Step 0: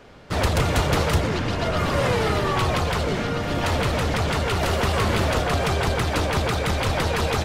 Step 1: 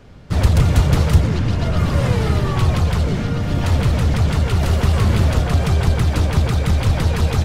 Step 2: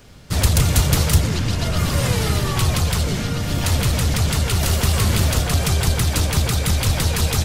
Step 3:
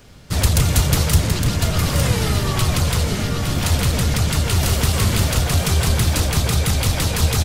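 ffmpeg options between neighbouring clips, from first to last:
-af "bass=f=250:g=13,treble=f=4k:g=3,volume=-3dB"
-af "crystalizer=i=4.5:c=0,volume=-3dB"
-af "aecho=1:1:862:0.447"

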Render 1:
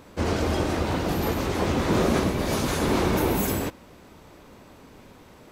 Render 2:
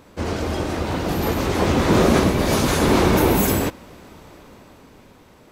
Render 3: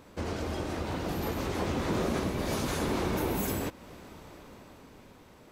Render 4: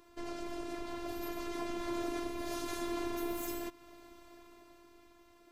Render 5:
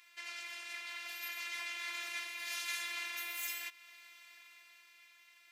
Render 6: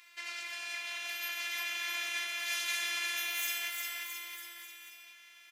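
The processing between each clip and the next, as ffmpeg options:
-af "dynaudnorm=f=230:g=11:m=7.5dB"
-af "acompressor=threshold=-29dB:ratio=2,volume=-5dB"
-af "afftfilt=real='hypot(re,im)*cos(PI*b)':imag='0':win_size=512:overlap=0.75,volume=-3.5dB"
-af "highpass=f=2.2k:t=q:w=2.7,volume=3dB"
-af "aecho=1:1:350|665|948.5|1204|1433:0.631|0.398|0.251|0.158|0.1,volume=4dB"

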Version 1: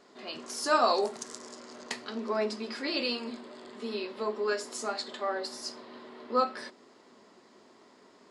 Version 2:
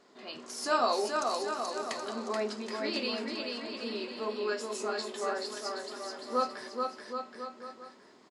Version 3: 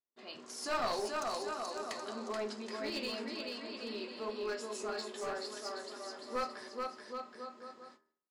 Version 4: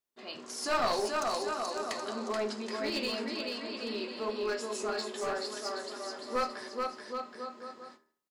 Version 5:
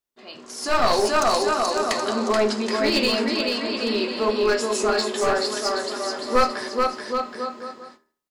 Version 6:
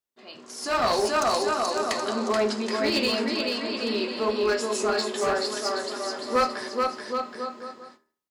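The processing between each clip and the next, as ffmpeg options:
-af "aecho=1:1:430|774|1049|1269|1445:0.631|0.398|0.251|0.158|0.1,volume=-3dB"
-af "aeval=exprs='clip(val(0),-1,0.0355)':c=same,agate=range=-37dB:threshold=-53dB:ratio=16:detection=peak,bandreject=f=78.88:t=h:w=4,bandreject=f=157.76:t=h:w=4,bandreject=f=236.64:t=h:w=4,bandreject=f=315.52:t=h:w=4,bandreject=f=394.4:t=h:w=4,bandreject=f=473.28:t=h:w=4,bandreject=f=552.16:t=h:w=4,bandreject=f=631.04:t=h:w=4,bandreject=f=709.92:t=h:w=4,bandreject=f=788.8:t=h:w=4,bandreject=f=867.68:t=h:w=4,bandreject=f=946.56:t=h:w=4,bandreject=f=1.02544k:t=h:w=4,bandreject=f=1.10432k:t=h:w=4,bandreject=f=1.1832k:t=h:w=4,bandreject=f=1.26208k:t=h:w=4,bandreject=f=1.34096k:t=h:w=4,bandreject=f=1.41984k:t=h:w=4,bandreject=f=1.49872k:t=h:w=4,bandreject=f=1.5776k:t=h:w=4,bandreject=f=1.65648k:t=h:w=4,bandreject=f=1.73536k:t=h:w=4,bandreject=f=1.81424k:t=h:w=4,bandreject=f=1.89312k:t=h:w=4,bandreject=f=1.972k:t=h:w=4,bandreject=f=2.05088k:t=h:w=4,bandreject=f=2.12976k:t=h:w=4,bandreject=f=2.20864k:t=h:w=4,bandreject=f=2.28752k:t=h:w=4,volume=-4.5dB"
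-af "aecho=1:1:75:0.075,volume=5dB"
-af "lowshelf=f=69:g=9,dynaudnorm=f=120:g=13:m=11dB,volume=1.5dB"
-af "highpass=45,volume=-3.5dB"

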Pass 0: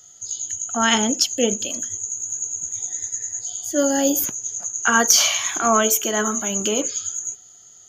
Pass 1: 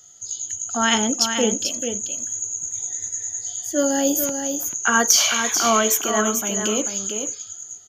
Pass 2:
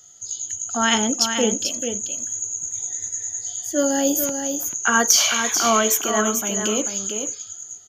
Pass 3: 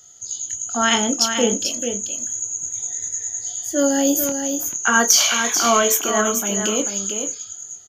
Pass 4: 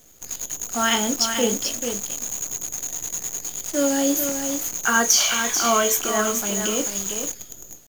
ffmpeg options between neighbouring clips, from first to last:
-af "aecho=1:1:439:0.447,volume=-1dB"
-af anull
-filter_complex "[0:a]asplit=2[a][b];[b]adelay=25,volume=-9dB[c];[a][c]amix=inputs=2:normalize=0,volume=1dB"
-af "acrusher=bits=5:dc=4:mix=0:aa=0.000001,volume=-3dB"

